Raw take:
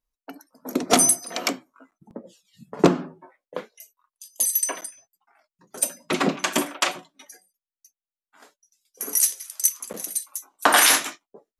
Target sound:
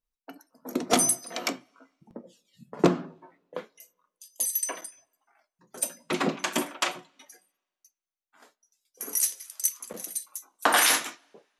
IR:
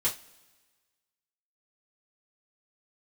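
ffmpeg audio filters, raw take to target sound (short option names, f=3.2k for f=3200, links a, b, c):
-filter_complex "[0:a]asplit=2[a][b];[1:a]atrim=start_sample=2205,lowpass=5.3k[c];[b][c]afir=irnorm=-1:irlink=0,volume=-18dB[d];[a][d]amix=inputs=2:normalize=0,volume=-5.5dB"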